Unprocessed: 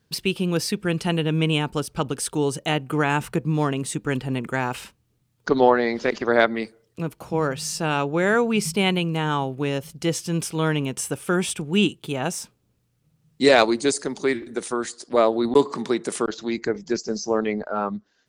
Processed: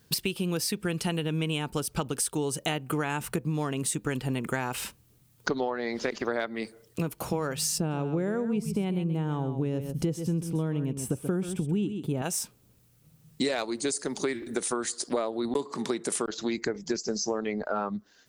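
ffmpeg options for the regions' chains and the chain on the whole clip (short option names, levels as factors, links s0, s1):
-filter_complex "[0:a]asettb=1/sr,asplit=3[s0][s1][s2];[s0]atrim=end=7.784[s3];[s1]atrim=start=7.78:end=12.22,asetpts=PTS-STARTPTS,afade=t=in:d=0.004:c=qsin,afade=t=out:st=4.436:d=0.004:c=qsin,tiltshelf=f=740:g=10,aecho=1:1:131:0.266,atrim=end_sample=195804[s4];[s2]atrim=start=12.216[s5];[s3][s4]acrossfade=d=0.004:c1=hsin:c2=qsin[s6];[s6][s5]acrossfade=d=0.004:c1=qsin:c2=hsin,highshelf=f=8300:g=12,acompressor=threshold=0.0282:ratio=10,volume=1.78"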